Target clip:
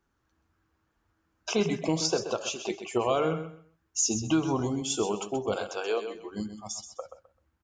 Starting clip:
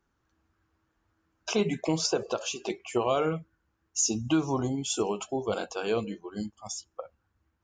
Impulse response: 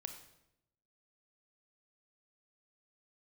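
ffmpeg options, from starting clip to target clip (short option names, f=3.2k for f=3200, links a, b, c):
-filter_complex "[0:a]asettb=1/sr,asplit=3[a][b][c];[a]atrim=end=5.564[d];[b]atrim=start=5.56:end=6.15,asetpts=PTS-STARTPTS,afade=t=in:d=0.004:c=qsin,afade=t=out:st=0.586:d=0.004:c=qsin,highpass=f=360:w=0.5412,highpass=f=360:w=1.3066[e];[c]atrim=start=6.146[f];[d][e]acrossfade=d=0.004:c1=hsin:c2=qsin[g];[g][f]acrossfade=d=0.004:c1=qsin:c2=hsin,asplit=2[h][i];[i]aecho=0:1:129|258|387:0.316|0.0696|0.0153[j];[h][j]amix=inputs=2:normalize=0"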